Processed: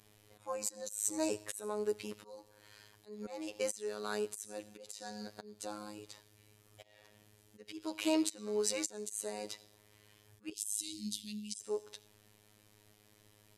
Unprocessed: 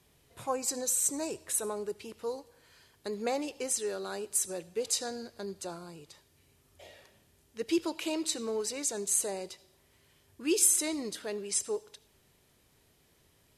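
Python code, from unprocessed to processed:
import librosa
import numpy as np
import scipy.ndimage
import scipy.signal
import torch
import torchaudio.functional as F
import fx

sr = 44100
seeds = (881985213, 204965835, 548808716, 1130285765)

y = fx.auto_swell(x, sr, attack_ms=401.0)
y = fx.robotise(y, sr, hz=105.0)
y = fx.ellip_bandstop(y, sr, low_hz=230.0, high_hz=3100.0, order=3, stop_db=40, at=(10.52, 11.59), fade=0.02)
y = y * 10.0 ** (3.5 / 20.0)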